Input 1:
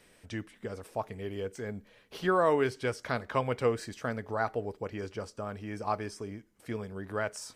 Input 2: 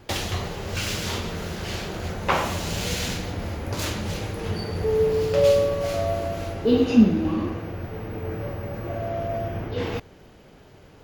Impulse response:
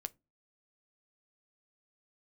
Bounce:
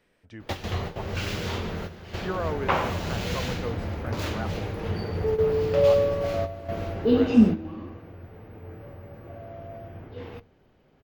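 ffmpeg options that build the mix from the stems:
-filter_complex "[0:a]volume=-5.5dB,asplit=2[link_01][link_02];[1:a]adelay=400,volume=-4dB,asplit=2[link_03][link_04];[link_04]volume=-5.5dB[link_05];[link_02]apad=whole_len=504075[link_06];[link_03][link_06]sidechaingate=range=-33dB:threshold=-54dB:ratio=16:detection=peak[link_07];[2:a]atrim=start_sample=2205[link_08];[link_05][link_08]afir=irnorm=-1:irlink=0[link_09];[link_01][link_07][link_09]amix=inputs=3:normalize=0,equalizer=frequency=9300:width=0.57:gain=-12.5"

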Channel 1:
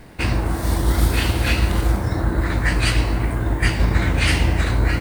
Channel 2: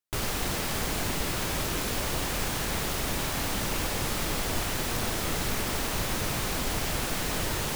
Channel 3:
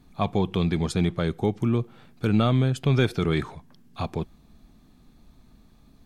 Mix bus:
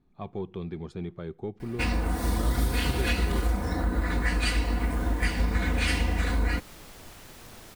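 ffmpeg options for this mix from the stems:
ffmpeg -i stem1.wav -i stem2.wav -i stem3.wav -filter_complex "[0:a]aecho=1:1:4.1:0.83,adelay=1600,volume=-6dB[link_01];[1:a]adelay=2500,volume=-17.5dB[link_02];[2:a]lowpass=frequency=1800:poles=1,equalizer=frequency=380:width_type=o:width=0.21:gain=8,aeval=exprs='0.422*(cos(1*acos(clip(val(0)/0.422,-1,1)))-cos(1*PI/2))+0.0133*(cos(4*acos(clip(val(0)/0.422,-1,1)))-cos(4*PI/2))':channel_layout=same,volume=-12.5dB,asplit=2[link_03][link_04];[link_04]apad=whole_len=452276[link_05];[link_02][link_05]sidechaincompress=threshold=-51dB:ratio=8:attack=16:release=651[link_06];[link_01][link_06][link_03]amix=inputs=3:normalize=0,acompressor=threshold=-23dB:ratio=2.5" out.wav

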